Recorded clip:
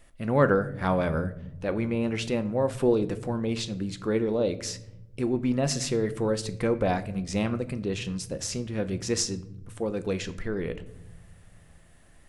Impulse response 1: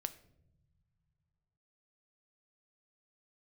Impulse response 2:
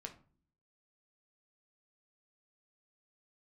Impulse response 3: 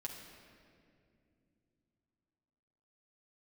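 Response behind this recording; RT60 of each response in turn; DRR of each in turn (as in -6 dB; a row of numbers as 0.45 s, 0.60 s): 1; no single decay rate, no single decay rate, 2.5 s; 10.5 dB, 3.0 dB, -1.5 dB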